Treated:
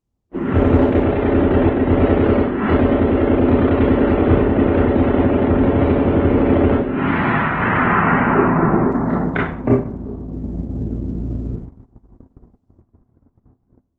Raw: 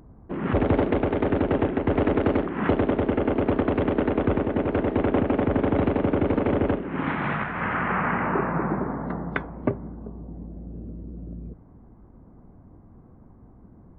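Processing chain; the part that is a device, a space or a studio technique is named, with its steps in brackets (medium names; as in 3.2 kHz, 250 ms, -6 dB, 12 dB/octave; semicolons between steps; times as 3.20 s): speakerphone in a meeting room (reverberation RT60 0.50 s, pre-delay 24 ms, DRR -4 dB; level rider gain up to 9 dB; gate -28 dBFS, range -33 dB; trim -1 dB; Opus 16 kbps 48 kHz)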